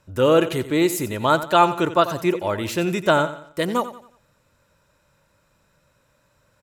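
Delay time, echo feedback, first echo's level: 89 ms, 39%, −13.5 dB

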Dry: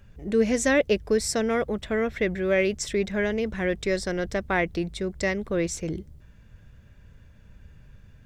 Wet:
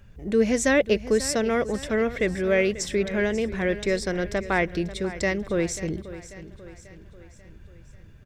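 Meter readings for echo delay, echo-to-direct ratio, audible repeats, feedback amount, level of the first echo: 540 ms, −13.5 dB, 4, 51%, −15.0 dB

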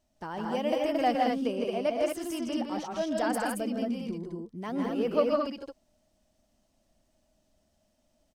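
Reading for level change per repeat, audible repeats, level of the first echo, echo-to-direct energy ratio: repeats not evenly spaced, 3, −12.5 dB, 1.0 dB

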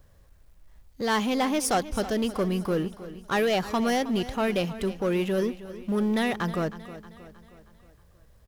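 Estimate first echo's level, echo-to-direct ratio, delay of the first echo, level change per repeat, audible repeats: −15.0 dB, −13.5 dB, 315 ms, −6.0 dB, 4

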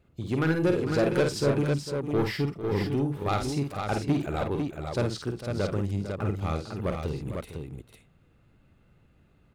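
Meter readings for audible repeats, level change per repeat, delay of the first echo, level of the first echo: 4, repeats not evenly spaced, 50 ms, −6.0 dB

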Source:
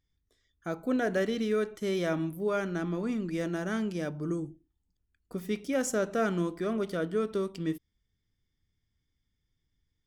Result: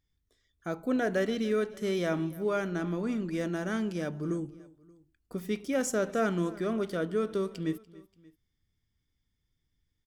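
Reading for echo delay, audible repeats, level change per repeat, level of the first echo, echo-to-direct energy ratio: 290 ms, 2, −5.0 dB, −21.0 dB, −20.0 dB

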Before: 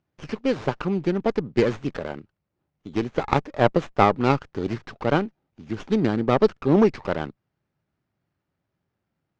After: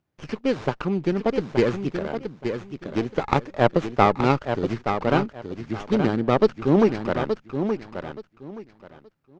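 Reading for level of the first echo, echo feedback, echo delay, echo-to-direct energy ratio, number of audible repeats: −7.5 dB, 22%, 874 ms, −7.5 dB, 3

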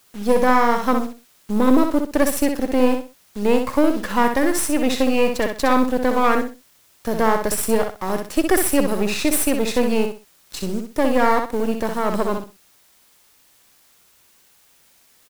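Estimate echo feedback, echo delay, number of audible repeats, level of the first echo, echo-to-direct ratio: 25%, 63 ms, 3, −6.0 dB, −5.5 dB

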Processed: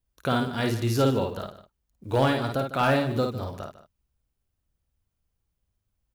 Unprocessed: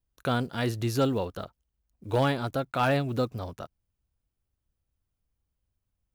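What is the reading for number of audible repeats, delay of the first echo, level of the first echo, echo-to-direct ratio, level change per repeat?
3, 53 ms, −4.5 dB, −3.5 dB, repeats not evenly spaced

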